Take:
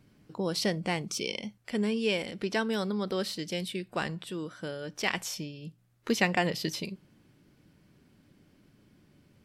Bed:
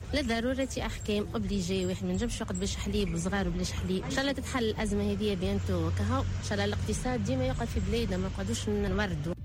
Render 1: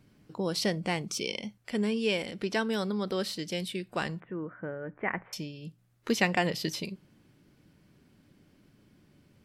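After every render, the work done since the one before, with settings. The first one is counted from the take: 4.20–5.33 s: steep low-pass 2.1 kHz 48 dB/octave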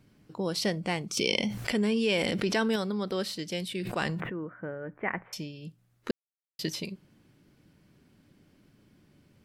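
1.17–2.76 s: level flattener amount 70%; 3.65–4.32 s: decay stretcher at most 26 dB/s; 6.11–6.59 s: mute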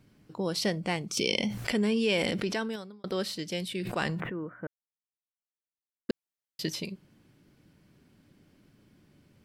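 0.95–1.41 s: dynamic bell 1.2 kHz, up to -4 dB, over -42 dBFS, Q 0.88; 2.26–3.04 s: fade out linear; 4.67–6.09 s: mute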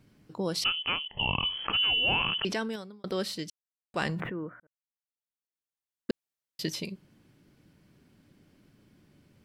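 0.64–2.45 s: frequency inversion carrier 3.2 kHz; 3.50–3.94 s: mute; 4.60–6.10 s: fade in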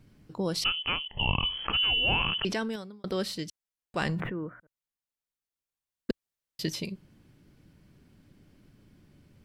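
bass shelf 86 Hz +11.5 dB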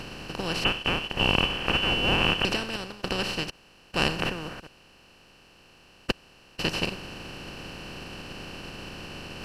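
spectral levelling over time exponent 0.2; upward expansion 2.5:1, over -32 dBFS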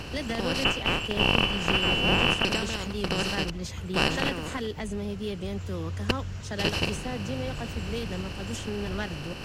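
add bed -3 dB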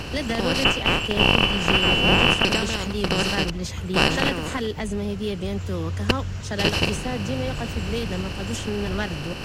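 trim +5.5 dB; peak limiter -2 dBFS, peak gain reduction 2.5 dB

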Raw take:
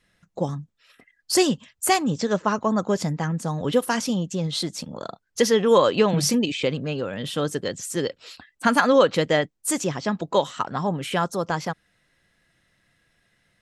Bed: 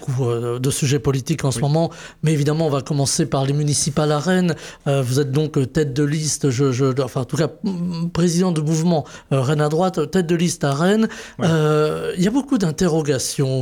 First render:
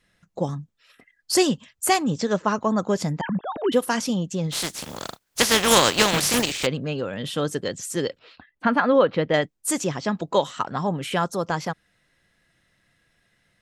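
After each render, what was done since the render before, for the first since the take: 3.21–3.72 s: formants replaced by sine waves; 4.51–6.65 s: spectral contrast reduction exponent 0.37; 8.19–9.34 s: distance through air 330 m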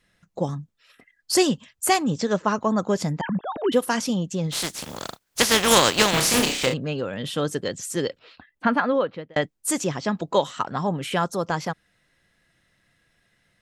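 6.12–6.74 s: flutter echo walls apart 5.5 m, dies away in 0.36 s; 8.69–9.36 s: fade out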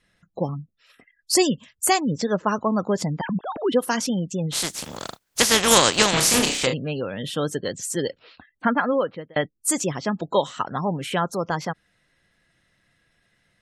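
spectral gate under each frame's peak -30 dB strong; dynamic bell 7.6 kHz, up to +4 dB, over -36 dBFS, Q 1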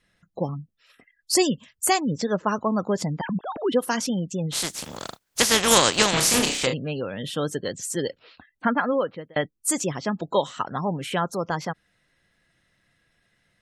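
trim -1.5 dB

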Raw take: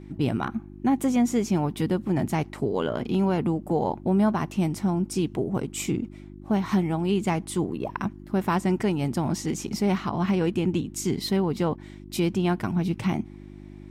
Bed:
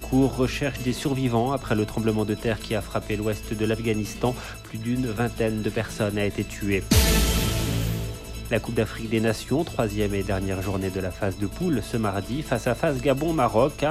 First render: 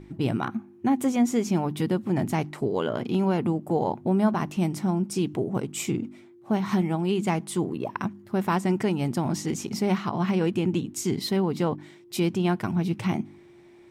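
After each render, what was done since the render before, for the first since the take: de-hum 50 Hz, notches 6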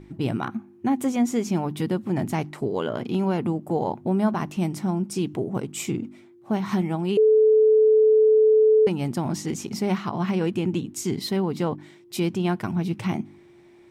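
7.17–8.87 s: bleep 434 Hz -13 dBFS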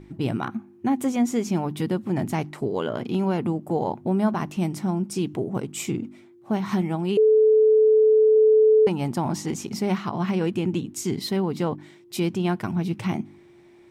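8.36–9.59 s: peaking EQ 900 Hz +5.5 dB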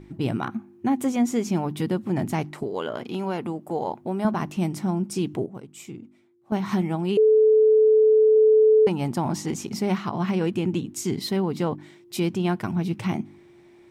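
2.63–4.25 s: bass shelf 260 Hz -10.5 dB; 5.46–6.52 s: gain -11.5 dB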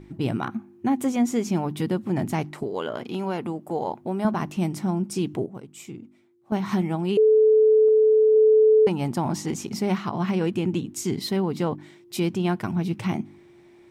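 7.88–8.34 s: dynamic bell 250 Hz, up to -4 dB, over -35 dBFS, Q 1.9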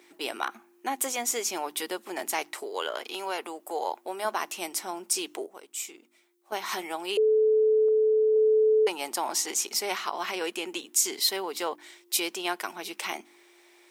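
high-pass 370 Hz 24 dB/octave; tilt EQ +3.5 dB/octave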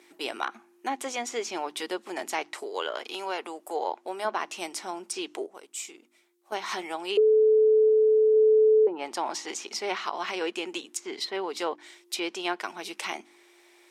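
dynamic bell 350 Hz, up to +5 dB, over -34 dBFS, Q 1.3; low-pass that closes with the level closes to 530 Hz, closed at -17 dBFS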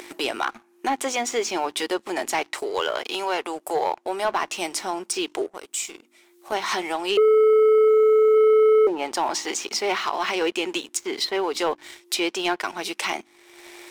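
waveshaping leveller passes 2; upward compressor, threshold -26 dBFS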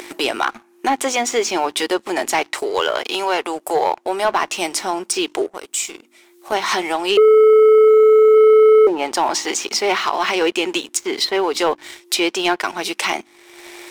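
trim +6 dB

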